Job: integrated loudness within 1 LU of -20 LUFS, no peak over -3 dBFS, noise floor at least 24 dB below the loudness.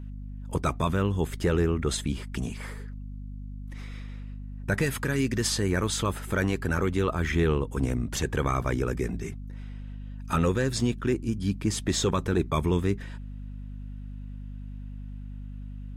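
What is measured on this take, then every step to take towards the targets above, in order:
hum 50 Hz; harmonics up to 250 Hz; hum level -35 dBFS; loudness -28.0 LUFS; peak -13.5 dBFS; loudness target -20.0 LUFS
-> notches 50/100/150/200/250 Hz; gain +8 dB

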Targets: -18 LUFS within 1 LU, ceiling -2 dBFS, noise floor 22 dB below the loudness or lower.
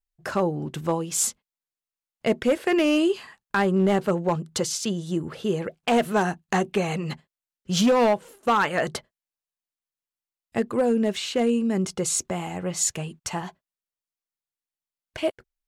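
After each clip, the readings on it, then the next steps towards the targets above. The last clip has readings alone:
clipped 0.7%; flat tops at -14.5 dBFS; loudness -25.0 LUFS; peak -14.5 dBFS; loudness target -18.0 LUFS
-> clip repair -14.5 dBFS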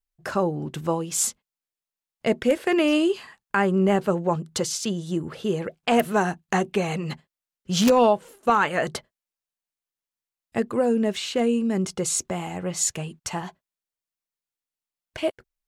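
clipped 0.0%; loudness -24.5 LUFS; peak -5.5 dBFS; loudness target -18.0 LUFS
-> gain +6.5 dB; limiter -2 dBFS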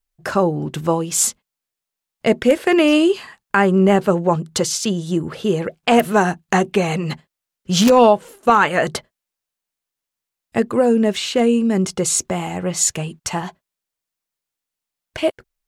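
loudness -18.0 LUFS; peak -2.0 dBFS; noise floor -85 dBFS

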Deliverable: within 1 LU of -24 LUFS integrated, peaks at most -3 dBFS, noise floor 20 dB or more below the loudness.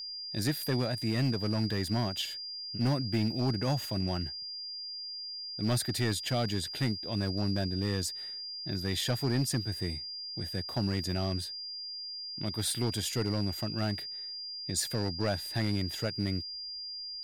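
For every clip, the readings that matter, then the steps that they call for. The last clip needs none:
clipped 1.0%; flat tops at -22.5 dBFS; steady tone 4800 Hz; tone level -38 dBFS; loudness -32.5 LUFS; peak -22.5 dBFS; loudness target -24.0 LUFS
-> clip repair -22.5 dBFS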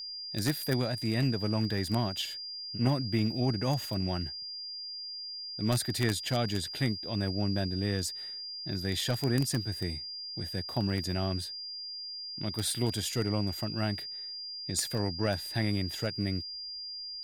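clipped 0.0%; steady tone 4800 Hz; tone level -38 dBFS
-> notch 4800 Hz, Q 30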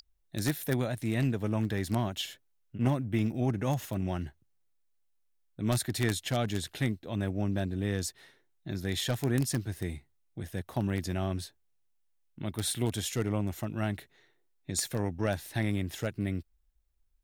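steady tone none; loudness -32.5 LUFS; peak -13.5 dBFS; loudness target -24.0 LUFS
-> gain +8.5 dB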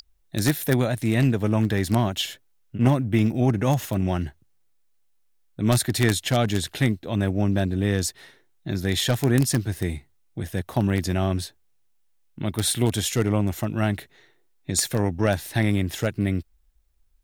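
loudness -24.0 LUFS; peak -5.0 dBFS; noise floor -63 dBFS

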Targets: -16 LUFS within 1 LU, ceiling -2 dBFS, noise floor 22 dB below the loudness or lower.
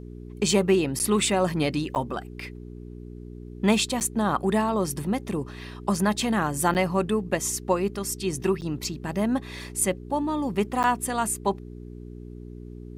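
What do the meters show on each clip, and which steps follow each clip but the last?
dropouts 6; longest dropout 9.2 ms; hum 60 Hz; harmonics up to 420 Hz; hum level -38 dBFS; loudness -25.5 LUFS; peak -6.5 dBFS; loudness target -16.0 LUFS
-> interpolate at 0.99/1.95/4/6.74/8.61/10.83, 9.2 ms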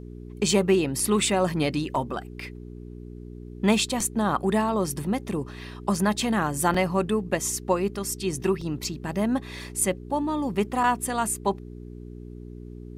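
dropouts 0; hum 60 Hz; harmonics up to 420 Hz; hum level -38 dBFS
-> de-hum 60 Hz, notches 7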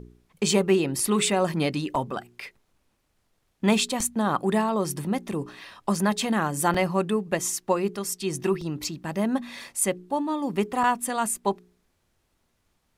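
hum none; loudness -26.0 LUFS; peak -7.0 dBFS; loudness target -16.0 LUFS
-> gain +10 dB; limiter -2 dBFS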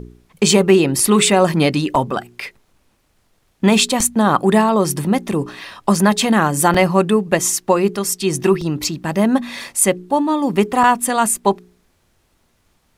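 loudness -16.0 LUFS; peak -2.0 dBFS; noise floor -62 dBFS

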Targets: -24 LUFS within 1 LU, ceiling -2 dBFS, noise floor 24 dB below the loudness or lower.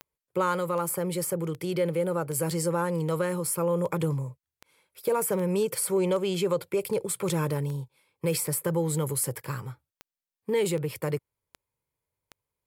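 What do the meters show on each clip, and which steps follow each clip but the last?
clicks 17; loudness -28.5 LUFS; peak -14.0 dBFS; loudness target -24.0 LUFS
-> de-click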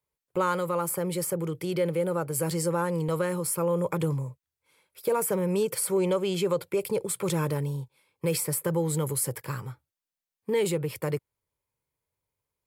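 clicks 0; loudness -28.5 LUFS; peak -14.0 dBFS; loudness target -24.0 LUFS
-> gain +4.5 dB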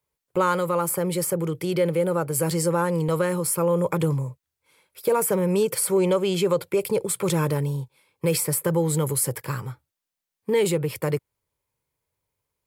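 loudness -24.0 LUFS; peak -9.5 dBFS; noise floor -86 dBFS

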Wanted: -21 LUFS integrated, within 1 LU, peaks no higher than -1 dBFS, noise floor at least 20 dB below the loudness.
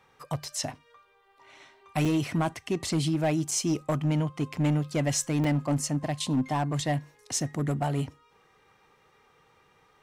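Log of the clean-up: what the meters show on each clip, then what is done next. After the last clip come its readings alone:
clipped 1.5%; flat tops at -20.0 dBFS; dropouts 3; longest dropout 4.4 ms; loudness -28.5 LUFS; peak -20.0 dBFS; loudness target -21.0 LUFS
-> clip repair -20 dBFS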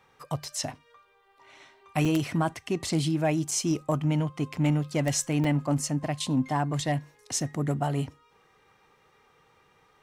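clipped 0.0%; dropouts 3; longest dropout 4.4 ms
-> interpolate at 2.05/3.51/5.44, 4.4 ms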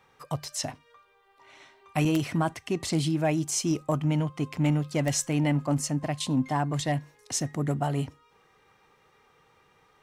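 dropouts 0; loudness -28.5 LUFS; peak -11.0 dBFS; loudness target -21.0 LUFS
-> gain +7.5 dB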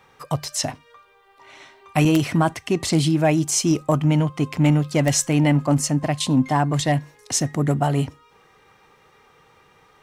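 loudness -21.0 LUFS; peak -3.5 dBFS; noise floor -56 dBFS

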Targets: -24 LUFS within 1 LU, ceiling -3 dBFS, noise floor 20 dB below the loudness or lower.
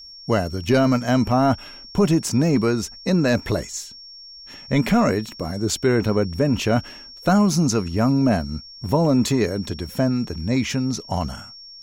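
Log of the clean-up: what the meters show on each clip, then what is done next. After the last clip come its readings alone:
steady tone 5500 Hz; tone level -39 dBFS; loudness -21.0 LUFS; peak -8.0 dBFS; loudness target -24.0 LUFS
-> notch 5500 Hz, Q 30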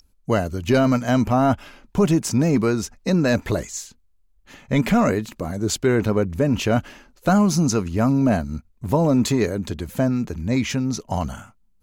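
steady tone none; loudness -21.0 LUFS; peak -8.5 dBFS; loudness target -24.0 LUFS
-> gain -3 dB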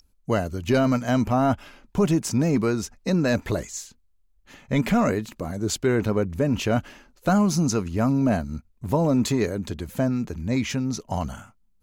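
loudness -24.0 LUFS; peak -11.5 dBFS; noise floor -63 dBFS

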